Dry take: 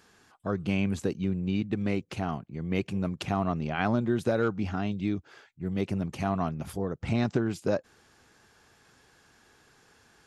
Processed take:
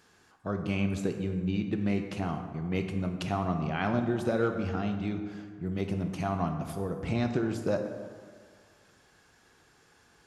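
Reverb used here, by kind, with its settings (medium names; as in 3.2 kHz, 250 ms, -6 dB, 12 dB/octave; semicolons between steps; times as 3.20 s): plate-style reverb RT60 1.8 s, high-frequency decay 0.5×, DRR 5 dB; trim -2.5 dB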